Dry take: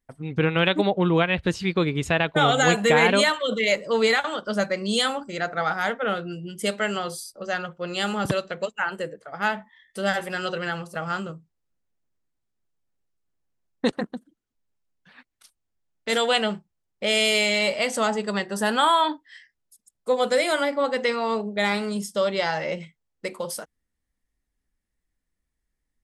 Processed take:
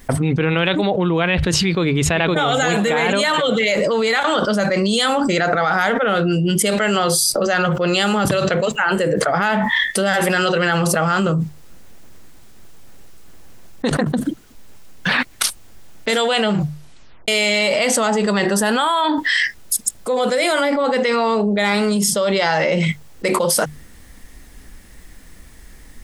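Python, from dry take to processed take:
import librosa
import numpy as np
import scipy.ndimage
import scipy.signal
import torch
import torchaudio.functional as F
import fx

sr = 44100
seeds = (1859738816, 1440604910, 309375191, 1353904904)

y = fx.echo_throw(x, sr, start_s=1.63, length_s=0.98, ms=510, feedback_pct=30, wet_db=-11.0)
y = fx.edit(y, sr, fx.tape_stop(start_s=16.53, length_s=0.75), tone=tone)
y = fx.hum_notches(y, sr, base_hz=50, count=3)
y = fx.env_flatten(y, sr, amount_pct=100)
y = y * librosa.db_to_amplitude(-1.5)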